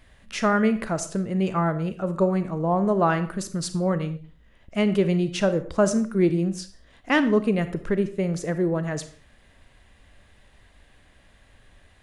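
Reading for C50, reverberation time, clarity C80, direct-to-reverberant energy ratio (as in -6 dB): 13.0 dB, not exponential, 15.5 dB, 11.0 dB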